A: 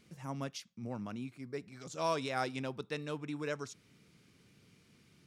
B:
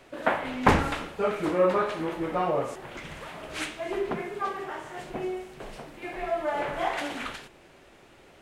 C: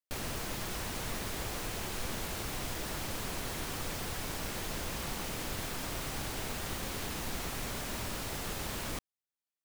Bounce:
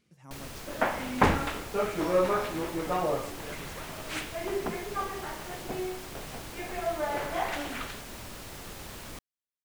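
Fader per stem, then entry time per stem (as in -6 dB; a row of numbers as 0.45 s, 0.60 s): -7.5 dB, -2.5 dB, -5.0 dB; 0.00 s, 0.55 s, 0.20 s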